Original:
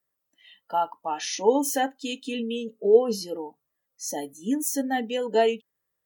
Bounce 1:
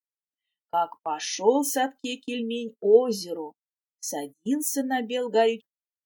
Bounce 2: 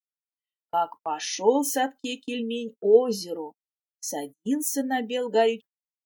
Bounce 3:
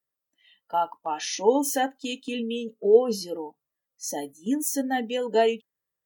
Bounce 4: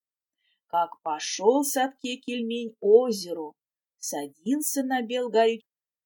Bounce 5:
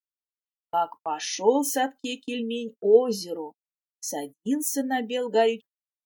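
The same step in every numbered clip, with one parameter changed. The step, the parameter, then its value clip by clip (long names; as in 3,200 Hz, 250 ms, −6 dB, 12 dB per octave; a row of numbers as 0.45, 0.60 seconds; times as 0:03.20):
noise gate, range: −31, −44, −6, −18, −56 decibels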